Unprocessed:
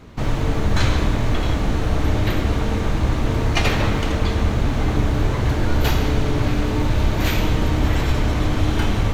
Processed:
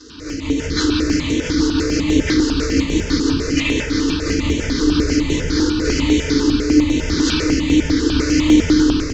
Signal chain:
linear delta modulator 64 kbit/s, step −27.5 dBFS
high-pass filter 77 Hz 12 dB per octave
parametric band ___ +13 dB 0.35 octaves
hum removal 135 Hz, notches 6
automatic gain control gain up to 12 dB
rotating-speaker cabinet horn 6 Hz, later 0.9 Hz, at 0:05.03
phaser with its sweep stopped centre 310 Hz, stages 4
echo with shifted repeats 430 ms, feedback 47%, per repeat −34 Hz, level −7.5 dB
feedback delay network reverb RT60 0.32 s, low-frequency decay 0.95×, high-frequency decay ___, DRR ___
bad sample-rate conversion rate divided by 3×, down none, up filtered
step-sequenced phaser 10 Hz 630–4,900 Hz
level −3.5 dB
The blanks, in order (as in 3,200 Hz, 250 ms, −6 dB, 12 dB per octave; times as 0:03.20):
10,000 Hz, 0.9×, −4.5 dB